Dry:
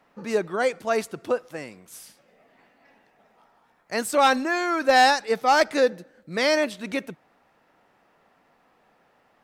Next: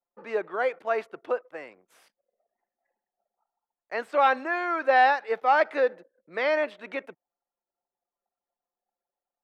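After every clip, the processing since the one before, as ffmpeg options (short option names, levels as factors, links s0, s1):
-filter_complex "[0:a]anlmdn=0.0158,acrossover=split=360 3000:gain=0.0891 1 0.141[s0][s1][s2];[s0][s1][s2]amix=inputs=3:normalize=0,acrossover=split=4500[s3][s4];[s4]acompressor=threshold=0.001:ratio=4:attack=1:release=60[s5];[s3][s5]amix=inputs=2:normalize=0,volume=0.841"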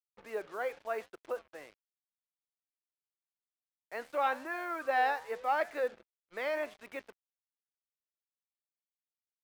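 -af "flanger=delay=7.6:depth=7:regen=-88:speed=0.88:shape=triangular,acrusher=bits=7:mix=0:aa=0.5,volume=0.562"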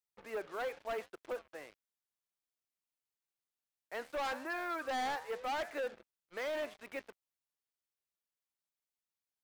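-af "asoftclip=type=hard:threshold=0.02"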